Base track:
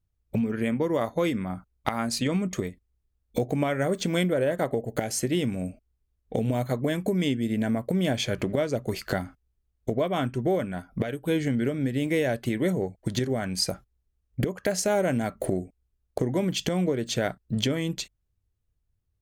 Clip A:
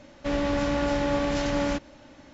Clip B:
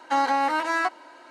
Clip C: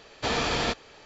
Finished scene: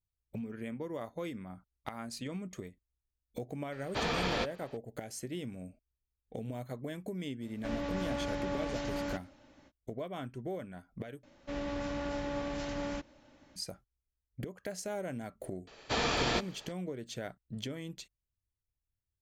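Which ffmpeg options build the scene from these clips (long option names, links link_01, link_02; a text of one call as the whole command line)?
ffmpeg -i bed.wav -i cue0.wav -i cue1.wav -i cue2.wav -filter_complex "[3:a]asplit=2[link_01][link_02];[1:a]asplit=2[link_03][link_04];[0:a]volume=-14dB[link_05];[link_01]adynamicsmooth=sensitivity=1.5:basefreq=5400[link_06];[link_05]asplit=2[link_07][link_08];[link_07]atrim=end=11.234[link_09];[link_04]atrim=end=2.33,asetpts=PTS-STARTPTS,volume=-11dB[link_10];[link_08]atrim=start=13.556[link_11];[link_06]atrim=end=1.05,asetpts=PTS-STARTPTS,volume=-5.5dB,afade=type=in:duration=0.004:curve=hsin,afade=type=out:start_time=1.046:duration=0.004:curve=hsin,adelay=3720[link_12];[link_03]atrim=end=2.33,asetpts=PTS-STARTPTS,volume=-10.5dB,afade=type=in:duration=0.05,afade=type=out:start_time=2.28:duration=0.05,adelay=7390[link_13];[link_02]atrim=end=1.05,asetpts=PTS-STARTPTS,volume=-4dB,afade=type=in:duration=0.004:curve=hsin,afade=type=out:start_time=1.046:duration=0.004:curve=hsin,adelay=15670[link_14];[link_09][link_10]acrossfade=duration=0.004:curve1=hsin:curve2=hsin[link_15];[link_15][link_11]acrossfade=duration=0.004:curve1=hsin:curve2=hsin[link_16];[link_16][link_12][link_13][link_14]amix=inputs=4:normalize=0" out.wav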